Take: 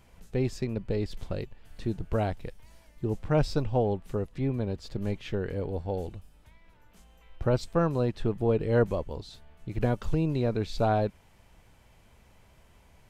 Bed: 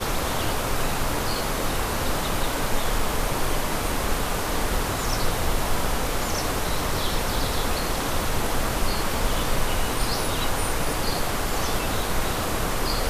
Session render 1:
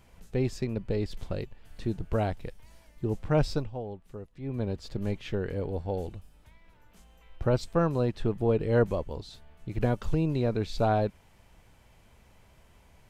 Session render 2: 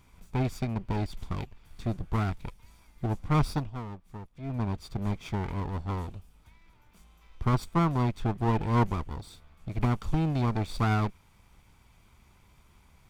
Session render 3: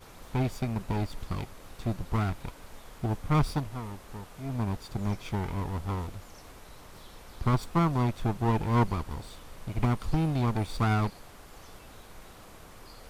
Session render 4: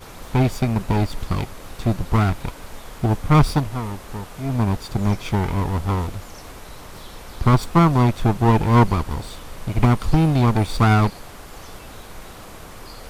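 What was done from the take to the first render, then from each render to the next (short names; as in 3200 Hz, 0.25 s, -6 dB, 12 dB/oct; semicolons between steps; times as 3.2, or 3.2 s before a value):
3.52–4.62 dip -11 dB, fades 0.20 s
minimum comb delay 0.86 ms
add bed -24.5 dB
gain +10.5 dB; limiter -3 dBFS, peak gain reduction 0.5 dB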